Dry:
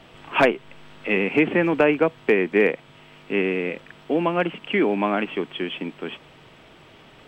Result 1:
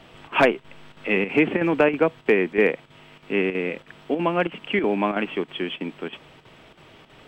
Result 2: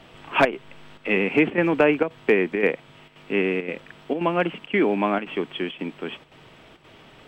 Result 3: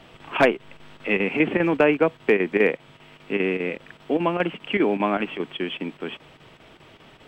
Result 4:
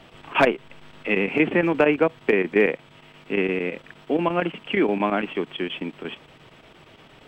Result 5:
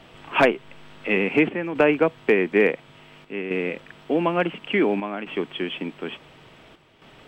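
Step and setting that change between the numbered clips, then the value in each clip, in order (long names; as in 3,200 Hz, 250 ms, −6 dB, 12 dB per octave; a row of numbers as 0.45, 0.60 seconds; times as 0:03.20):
square-wave tremolo, speed: 3.1, 1.9, 5, 8.6, 0.57 Hertz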